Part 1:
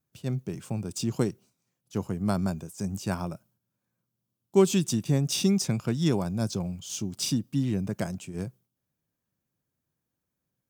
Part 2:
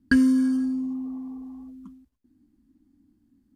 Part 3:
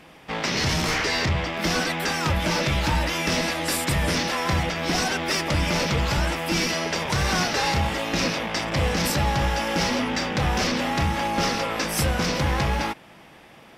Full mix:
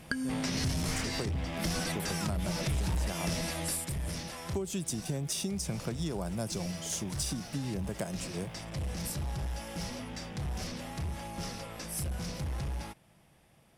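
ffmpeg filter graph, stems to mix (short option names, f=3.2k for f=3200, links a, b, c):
-filter_complex "[0:a]acrossover=split=500[a][b];[b]acompressor=threshold=-30dB:ratio=6[c];[a][c]amix=inputs=2:normalize=0,volume=-1dB,asplit=2[d][e];[1:a]aecho=1:1:1.3:0.65,volume=1dB[f];[2:a]bass=f=250:g=14,treble=f=4k:g=6,asoftclip=type=hard:threshold=-10.5dB,volume=-7.5dB,afade=t=out:st=3.3:d=0.61:silence=0.237137[g];[e]apad=whole_len=607559[h];[g][h]sidechaincompress=threshold=-27dB:ratio=8:attack=16:release=928[i];[d][f]amix=inputs=2:normalize=0,highpass=110,acompressor=threshold=-28dB:ratio=3,volume=0dB[j];[i][j]amix=inputs=2:normalize=0,equalizer=f=250:t=o:w=0.67:g=-4,equalizer=f=630:t=o:w=0.67:g=4,equalizer=f=10k:t=o:w=0.67:g=10,acompressor=threshold=-31dB:ratio=3"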